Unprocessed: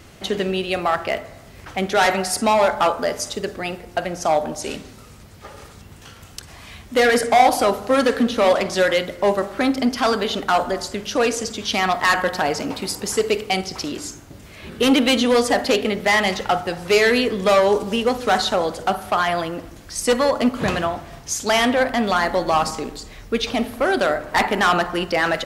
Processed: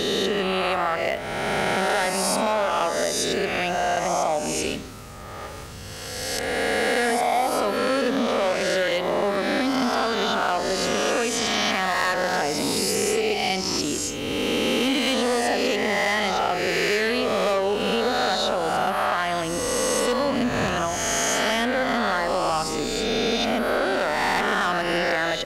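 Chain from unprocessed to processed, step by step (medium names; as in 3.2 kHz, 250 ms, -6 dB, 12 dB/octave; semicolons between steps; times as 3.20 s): reverse spectral sustain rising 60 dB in 1.96 s; compression, threshold -20 dBFS, peak gain reduction 13 dB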